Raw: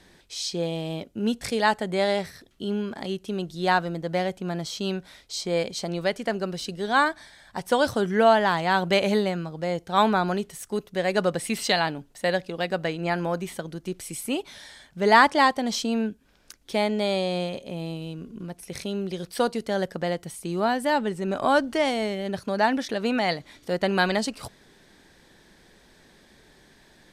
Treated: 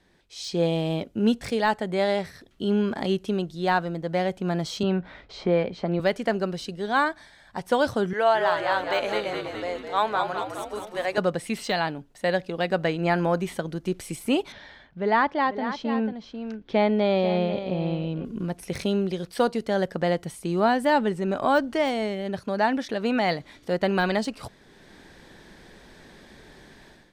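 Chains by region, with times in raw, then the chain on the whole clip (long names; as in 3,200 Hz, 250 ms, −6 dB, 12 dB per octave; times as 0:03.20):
0:04.83–0:06.00: low-pass filter 2,100 Hz + double-tracking delay 17 ms −13 dB + multiband upward and downward compressor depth 40%
0:08.13–0:11.18: high-pass filter 520 Hz + echo with shifted repeats 208 ms, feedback 57%, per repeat −55 Hz, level −6 dB
0:14.52–0:18.25: high-frequency loss of the air 230 metres + single-tap delay 493 ms −12 dB
whole clip: automatic gain control gain up to 15 dB; high-shelf EQ 4,500 Hz −7.5 dB; de-essing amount 50%; level −8 dB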